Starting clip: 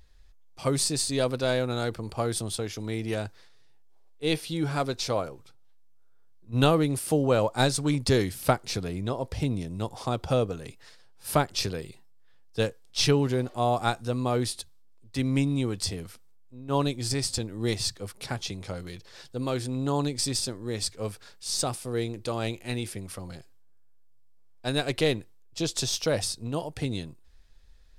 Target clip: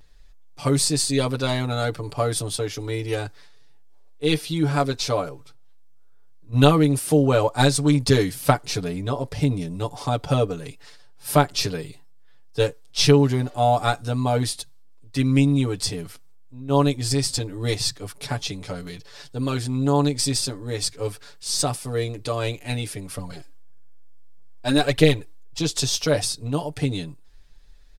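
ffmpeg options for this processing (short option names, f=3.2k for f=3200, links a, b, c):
-filter_complex "[0:a]aecho=1:1:6.9:0.95,asettb=1/sr,asplit=3[a][b][c];[a]atrim=end=23.164[d];[b]atrim=start=23.16:end=25.59,asetpts=PTS-STARTPTS,afade=t=in:d=0.004:c=qsin,afade=t=out:st=2.426:d=0.004:c=qsin,aphaser=in_gain=1:out_gain=1:delay=3.8:decay=0.51:speed=1.6:type=triangular[e];[c]atrim=start=25.586[f];[d][e]acrossfade=d=0.004:c1=hsin:c2=qsin[g];[g][f]acrossfade=d=0.004:c1=qsin:c2=hsin,volume=2dB"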